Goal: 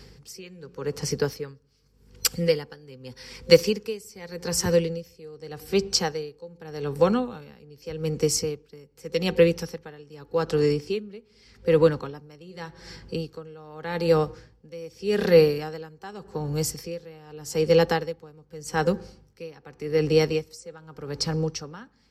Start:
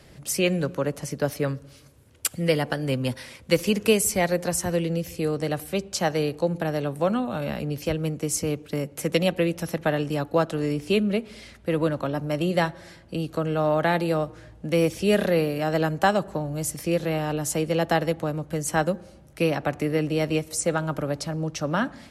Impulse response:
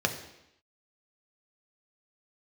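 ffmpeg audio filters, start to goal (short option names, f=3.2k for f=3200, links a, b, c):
-af "superequalizer=6b=0.708:7b=2:8b=0.282:14b=2.51:16b=0.447,aeval=exprs='val(0)+0.00316*(sin(2*PI*50*n/s)+sin(2*PI*2*50*n/s)/2+sin(2*PI*3*50*n/s)/3+sin(2*PI*4*50*n/s)/4+sin(2*PI*5*50*n/s)/5)':c=same,aeval=exprs='val(0)*pow(10,-24*(0.5-0.5*cos(2*PI*0.84*n/s))/20)':c=same,volume=3dB"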